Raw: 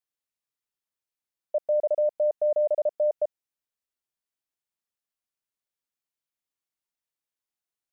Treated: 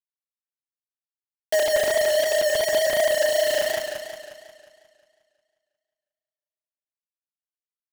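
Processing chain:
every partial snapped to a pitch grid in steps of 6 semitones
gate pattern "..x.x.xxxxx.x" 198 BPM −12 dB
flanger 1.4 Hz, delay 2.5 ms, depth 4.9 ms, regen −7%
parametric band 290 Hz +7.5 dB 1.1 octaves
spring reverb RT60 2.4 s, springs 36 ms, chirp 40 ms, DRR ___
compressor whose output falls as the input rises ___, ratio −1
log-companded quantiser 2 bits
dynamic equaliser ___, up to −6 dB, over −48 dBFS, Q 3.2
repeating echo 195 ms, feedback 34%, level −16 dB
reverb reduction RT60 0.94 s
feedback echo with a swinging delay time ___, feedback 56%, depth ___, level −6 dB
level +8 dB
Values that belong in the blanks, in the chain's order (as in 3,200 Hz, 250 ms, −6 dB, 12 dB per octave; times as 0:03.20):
0 dB, −29 dBFS, 460 Hz, 179 ms, 89 cents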